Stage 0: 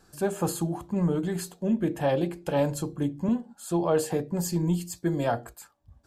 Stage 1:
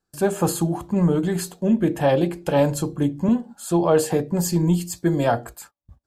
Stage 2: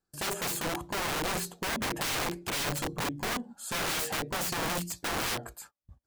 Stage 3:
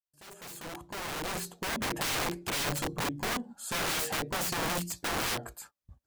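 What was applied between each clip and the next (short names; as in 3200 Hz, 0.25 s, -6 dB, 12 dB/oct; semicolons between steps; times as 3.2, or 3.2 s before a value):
gate -51 dBFS, range -27 dB; gain +6.5 dB
wrapped overs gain 21 dB; gain -5.5 dB
opening faded in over 2.00 s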